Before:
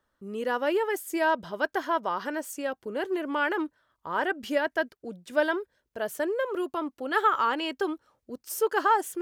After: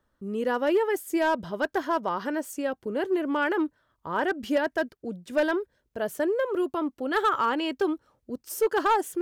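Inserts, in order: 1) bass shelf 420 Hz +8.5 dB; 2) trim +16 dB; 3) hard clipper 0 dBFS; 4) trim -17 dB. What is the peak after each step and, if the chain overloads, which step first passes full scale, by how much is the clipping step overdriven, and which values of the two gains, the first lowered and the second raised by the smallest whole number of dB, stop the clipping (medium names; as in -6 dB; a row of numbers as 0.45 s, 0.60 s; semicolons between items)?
-9.0 dBFS, +7.0 dBFS, 0.0 dBFS, -17.0 dBFS; step 2, 7.0 dB; step 2 +9 dB, step 4 -10 dB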